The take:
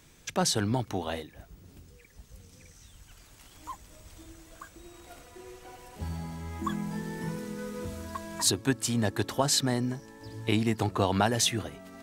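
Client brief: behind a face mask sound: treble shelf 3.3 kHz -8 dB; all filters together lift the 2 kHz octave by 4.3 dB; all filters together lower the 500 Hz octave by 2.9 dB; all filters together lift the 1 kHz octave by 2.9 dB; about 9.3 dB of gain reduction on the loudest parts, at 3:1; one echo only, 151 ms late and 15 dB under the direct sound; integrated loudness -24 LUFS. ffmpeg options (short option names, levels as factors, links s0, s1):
-af "equalizer=f=500:t=o:g=-5.5,equalizer=f=1000:t=o:g=5,equalizer=f=2000:t=o:g=6.5,acompressor=threshold=0.0251:ratio=3,highshelf=f=3300:g=-8,aecho=1:1:151:0.178,volume=5.01"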